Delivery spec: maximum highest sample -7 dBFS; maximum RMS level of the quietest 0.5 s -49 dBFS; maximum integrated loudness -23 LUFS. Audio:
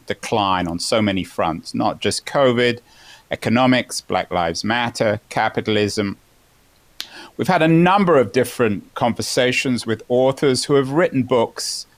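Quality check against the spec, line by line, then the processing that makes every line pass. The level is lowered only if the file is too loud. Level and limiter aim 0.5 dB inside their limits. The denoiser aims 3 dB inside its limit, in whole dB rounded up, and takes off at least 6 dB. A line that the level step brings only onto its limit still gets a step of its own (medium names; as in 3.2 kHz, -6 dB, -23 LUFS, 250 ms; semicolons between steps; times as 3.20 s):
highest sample -6.0 dBFS: fail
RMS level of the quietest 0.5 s -55 dBFS: pass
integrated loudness -18.5 LUFS: fail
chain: trim -5 dB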